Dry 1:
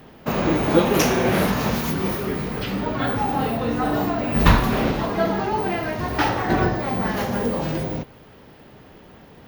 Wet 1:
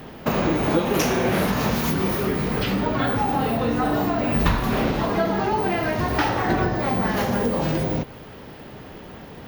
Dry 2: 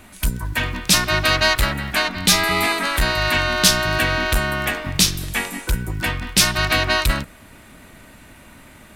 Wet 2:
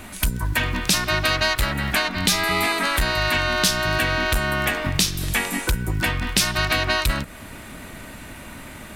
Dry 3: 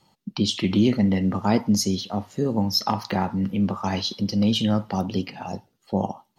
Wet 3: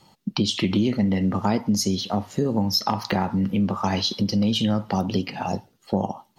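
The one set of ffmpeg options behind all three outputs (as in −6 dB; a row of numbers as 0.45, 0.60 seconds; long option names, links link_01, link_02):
-af "acompressor=threshold=-27dB:ratio=3,volume=6.5dB"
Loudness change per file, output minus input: −0.5, −2.5, 0.0 LU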